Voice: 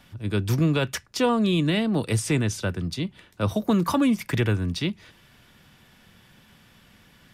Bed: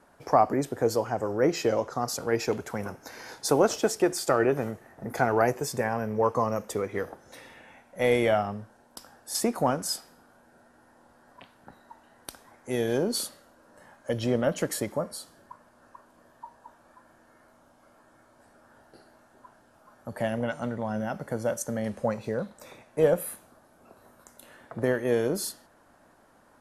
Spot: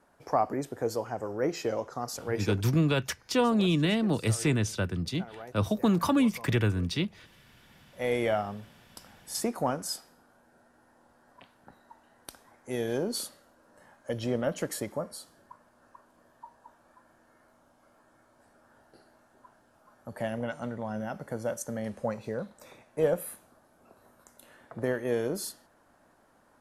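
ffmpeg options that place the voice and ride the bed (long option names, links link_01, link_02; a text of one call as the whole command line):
ffmpeg -i stem1.wav -i stem2.wav -filter_complex "[0:a]adelay=2150,volume=-3dB[link_01];[1:a]volume=12dB,afade=type=out:start_time=2.48:duration=0.24:silence=0.158489,afade=type=in:start_time=7.59:duration=0.65:silence=0.133352[link_02];[link_01][link_02]amix=inputs=2:normalize=0" out.wav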